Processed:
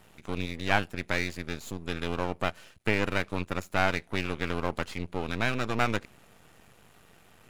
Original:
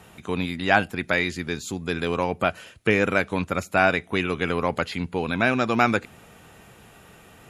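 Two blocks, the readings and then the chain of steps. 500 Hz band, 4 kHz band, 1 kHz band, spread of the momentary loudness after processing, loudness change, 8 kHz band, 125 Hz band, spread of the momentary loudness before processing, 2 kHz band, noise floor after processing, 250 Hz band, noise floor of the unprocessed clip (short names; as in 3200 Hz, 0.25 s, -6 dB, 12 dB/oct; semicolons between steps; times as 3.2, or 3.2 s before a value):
-8.0 dB, -4.0 dB, -7.0 dB, 8 LU, -7.0 dB, -4.5 dB, -4.0 dB, 8 LU, -7.0 dB, -58 dBFS, -7.5 dB, -51 dBFS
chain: half-wave rectifier; gain -4 dB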